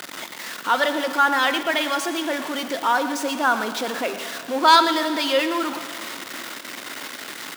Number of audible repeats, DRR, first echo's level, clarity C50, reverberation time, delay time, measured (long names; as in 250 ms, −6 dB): 1, 8.5 dB, −13.5 dB, 9.0 dB, 2.9 s, 115 ms